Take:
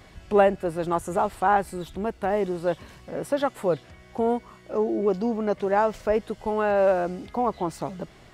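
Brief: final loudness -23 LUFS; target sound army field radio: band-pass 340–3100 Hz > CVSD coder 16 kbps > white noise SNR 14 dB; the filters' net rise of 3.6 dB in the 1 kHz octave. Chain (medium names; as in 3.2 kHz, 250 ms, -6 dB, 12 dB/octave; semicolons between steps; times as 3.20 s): band-pass 340–3100 Hz; peaking EQ 1 kHz +5 dB; CVSD coder 16 kbps; white noise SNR 14 dB; trim +3 dB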